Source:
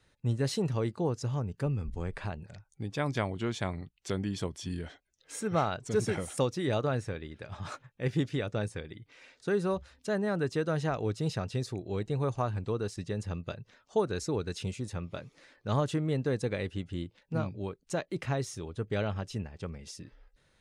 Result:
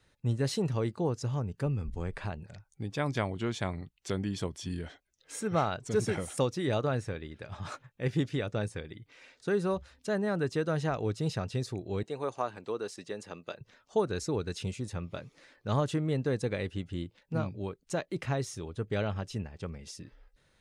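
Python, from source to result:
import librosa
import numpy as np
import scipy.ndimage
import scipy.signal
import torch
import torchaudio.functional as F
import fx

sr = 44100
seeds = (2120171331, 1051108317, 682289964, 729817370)

y = fx.highpass(x, sr, hz=330.0, slope=12, at=(12.03, 13.61))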